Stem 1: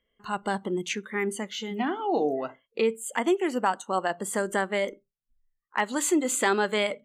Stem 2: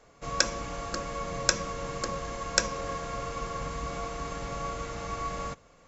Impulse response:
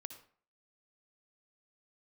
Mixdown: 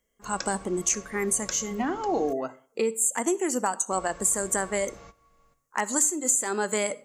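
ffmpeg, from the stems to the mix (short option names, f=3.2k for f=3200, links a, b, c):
-filter_complex "[0:a]highshelf=f=4.9k:t=q:w=3:g=11.5,acompressor=threshold=-21dB:ratio=12,volume=-2dB,asplit=3[a][b][c];[b]volume=-4.5dB[d];[1:a]volume=-12dB,asplit=3[e][f][g];[e]atrim=end=2.33,asetpts=PTS-STARTPTS,afade=t=out:st=2.326:d=0.004:c=hsin[h];[f]atrim=start=2.33:end=3.91,asetpts=PTS-STARTPTS,volume=0[i];[g]atrim=start=3.91,asetpts=PTS-STARTPTS,afade=t=in:d=0.004:c=hsin[j];[h][i][j]concat=n=3:v=0:a=1,asplit=2[k][l];[l]volume=-16.5dB[m];[c]apad=whole_len=259164[n];[k][n]sidechaingate=range=-33dB:threshold=-58dB:ratio=16:detection=peak[o];[2:a]atrim=start_sample=2205[p];[d][m]amix=inputs=2:normalize=0[q];[q][p]afir=irnorm=-1:irlink=0[r];[a][o][r]amix=inputs=3:normalize=0"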